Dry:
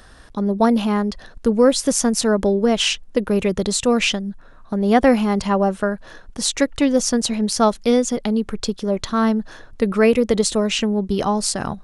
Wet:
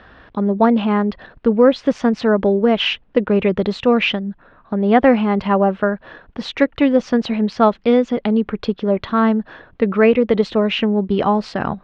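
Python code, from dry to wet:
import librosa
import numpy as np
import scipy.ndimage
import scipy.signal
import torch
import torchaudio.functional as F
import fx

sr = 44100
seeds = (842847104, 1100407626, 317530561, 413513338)

p1 = scipy.signal.sosfilt(scipy.signal.butter(4, 3100.0, 'lowpass', fs=sr, output='sos'), x)
p2 = fx.rider(p1, sr, range_db=3, speed_s=0.5)
p3 = p1 + (p2 * librosa.db_to_amplitude(-3.0))
p4 = fx.highpass(p3, sr, hz=110.0, slope=6)
y = p4 * librosa.db_to_amplitude(-1.5)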